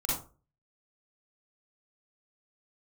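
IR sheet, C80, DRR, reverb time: 7.0 dB, −6.5 dB, 0.35 s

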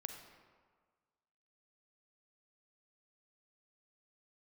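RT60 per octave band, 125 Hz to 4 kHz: 1.6, 1.5, 1.6, 1.6, 1.3, 0.95 seconds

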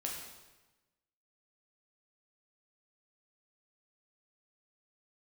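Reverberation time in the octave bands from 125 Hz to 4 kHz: 1.3, 1.2, 1.1, 1.1, 1.0, 1.0 seconds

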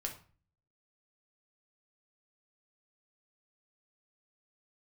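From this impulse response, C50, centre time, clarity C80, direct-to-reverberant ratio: 9.5 dB, 15 ms, 15.0 dB, 1.5 dB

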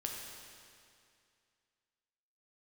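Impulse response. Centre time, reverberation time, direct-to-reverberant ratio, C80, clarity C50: 95 ms, 2.3 s, −0.5 dB, 2.5 dB, 1.5 dB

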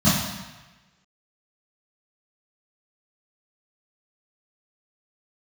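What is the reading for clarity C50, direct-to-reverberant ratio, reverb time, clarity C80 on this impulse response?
0.5 dB, −14.0 dB, 1.2 s, 4.0 dB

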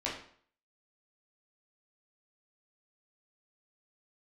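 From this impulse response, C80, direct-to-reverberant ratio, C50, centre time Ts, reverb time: 9.5 dB, −6.5 dB, 5.5 dB, 37 ms, 0.55 s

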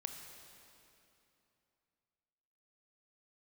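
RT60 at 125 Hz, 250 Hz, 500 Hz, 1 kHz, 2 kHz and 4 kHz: 3.2, 3.1, 2.9, 2.9, 2.6, 2.4 seconds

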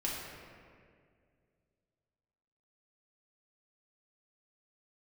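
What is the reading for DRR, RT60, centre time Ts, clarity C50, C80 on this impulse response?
−5.5 dB, 2.1 s, 106 ms, 0.0 dB, 1.5 dB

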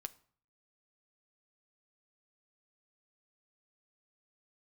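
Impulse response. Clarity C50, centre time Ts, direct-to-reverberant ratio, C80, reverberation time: 20.5 dB, 3 ms, 8.5 dB, 24.0 dB, 0.50 s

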